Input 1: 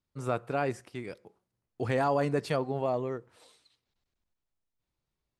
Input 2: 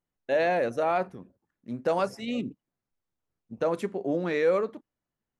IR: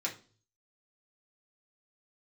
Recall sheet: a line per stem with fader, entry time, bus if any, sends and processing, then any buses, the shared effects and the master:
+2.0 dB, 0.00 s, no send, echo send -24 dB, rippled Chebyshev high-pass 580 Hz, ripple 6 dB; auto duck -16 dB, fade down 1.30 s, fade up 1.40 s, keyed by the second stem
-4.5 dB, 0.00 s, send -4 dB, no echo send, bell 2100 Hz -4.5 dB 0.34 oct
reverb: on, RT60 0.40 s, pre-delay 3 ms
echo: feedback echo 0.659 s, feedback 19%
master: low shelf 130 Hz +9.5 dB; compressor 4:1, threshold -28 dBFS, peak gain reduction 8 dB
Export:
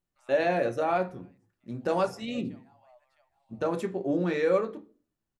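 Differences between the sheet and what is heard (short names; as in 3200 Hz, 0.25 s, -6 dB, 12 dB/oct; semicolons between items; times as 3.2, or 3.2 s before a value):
stem 1 +2.0 dB -> -8.0 dB; master: missing compressor 4:1, threshold -28 dBFS, peak gain reduction 8 dB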